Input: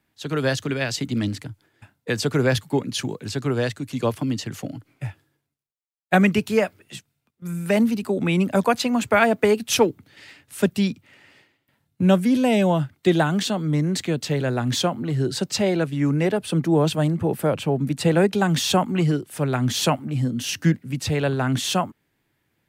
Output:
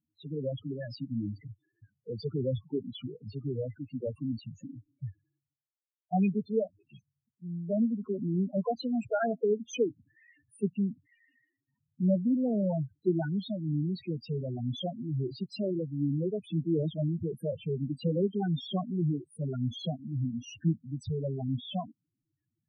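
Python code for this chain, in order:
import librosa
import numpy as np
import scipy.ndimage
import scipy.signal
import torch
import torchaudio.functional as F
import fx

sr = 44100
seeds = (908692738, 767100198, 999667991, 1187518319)

y = fx.spec_topn(x, sr, count=4)
y = y * librosa.db_to_amplitude(-8.0)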